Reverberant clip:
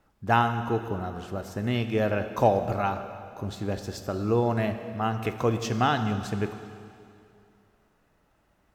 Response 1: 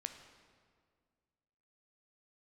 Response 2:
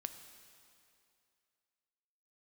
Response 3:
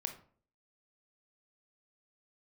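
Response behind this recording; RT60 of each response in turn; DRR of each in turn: 2; 1.9 s, 2.6 s, 0.50 s; 6.5 dB, 8.0 dB, 5.5 dB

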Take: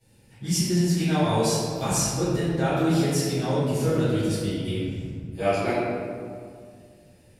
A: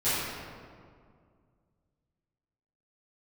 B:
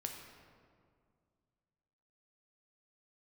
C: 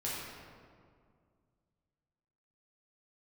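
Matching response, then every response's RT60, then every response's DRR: A; 2.1 s, 2.1 s, 2.1 s; -17.0 dB, 2.0 dB, -8.0 dB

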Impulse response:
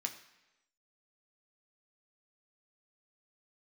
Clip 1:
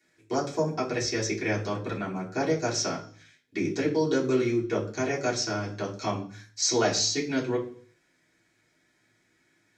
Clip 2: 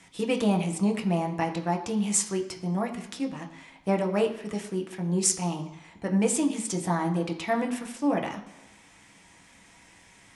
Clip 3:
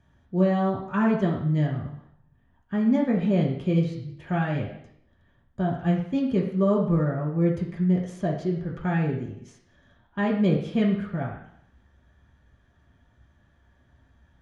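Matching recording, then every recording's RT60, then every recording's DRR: 2; 0.50 s, 1.0 s, 0.70 s; -8.0 dB, 3.5 dB, -3.5 dB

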